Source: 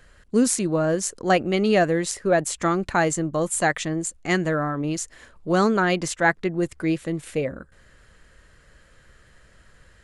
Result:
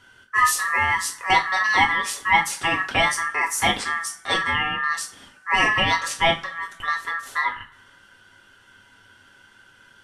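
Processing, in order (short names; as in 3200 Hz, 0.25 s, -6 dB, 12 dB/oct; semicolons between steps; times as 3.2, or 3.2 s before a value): 6.42–6.88 compressor, threshold -27 dBFS, peak gain reduction 8 dB; ring modulator 1500 Hz; two-slope reverb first 0.28 s, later 1.8 s, from -28 dB, DRR -1.5 dB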